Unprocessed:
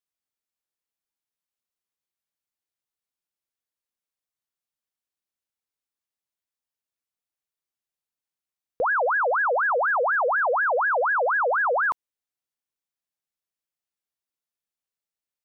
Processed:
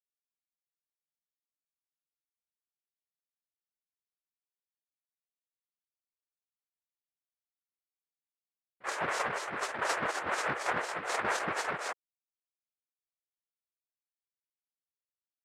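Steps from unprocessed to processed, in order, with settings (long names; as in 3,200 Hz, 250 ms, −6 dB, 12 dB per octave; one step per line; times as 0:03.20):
cochlear-implant simulation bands 3
noise gate −19 dBFS, range −41 dB
in parallel at −6 dB: soft clipping −31 dBFS, distortion −13 dB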